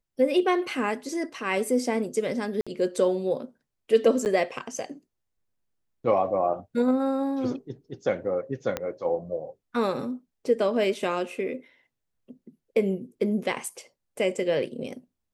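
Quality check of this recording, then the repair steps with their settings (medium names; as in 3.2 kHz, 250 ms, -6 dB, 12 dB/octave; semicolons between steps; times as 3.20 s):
2.61–2.67 s: dropout 56 ms
4.25–4.26 s: dropout 9.1 ms
8.77 s: pop -13 dBFS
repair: de-click; interpolate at 2.61 s, 56 ms; interpolate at 4.25 s, 9.1 ms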